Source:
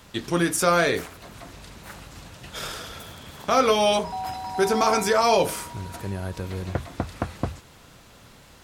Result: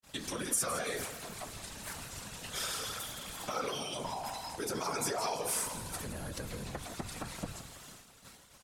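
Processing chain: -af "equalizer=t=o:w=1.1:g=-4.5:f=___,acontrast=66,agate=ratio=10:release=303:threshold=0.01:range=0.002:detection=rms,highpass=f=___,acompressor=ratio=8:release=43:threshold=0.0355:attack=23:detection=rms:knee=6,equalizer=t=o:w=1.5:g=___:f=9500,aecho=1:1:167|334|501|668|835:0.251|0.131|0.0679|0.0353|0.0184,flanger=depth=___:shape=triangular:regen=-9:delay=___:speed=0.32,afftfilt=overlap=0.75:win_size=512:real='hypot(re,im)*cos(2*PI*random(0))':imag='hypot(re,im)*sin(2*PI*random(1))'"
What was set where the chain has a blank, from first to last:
290, 52, 9.5, 1.1, 3.6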